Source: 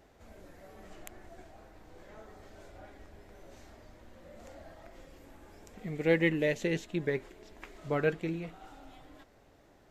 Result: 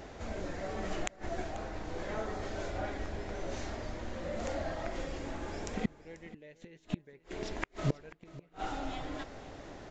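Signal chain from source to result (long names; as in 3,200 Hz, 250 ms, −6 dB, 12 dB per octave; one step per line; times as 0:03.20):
gate with flip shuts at −32 dBFS, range −38 dB
single-tap delay 488 ms −18 dB
downsampling to 16,000 Hz
level +14 dB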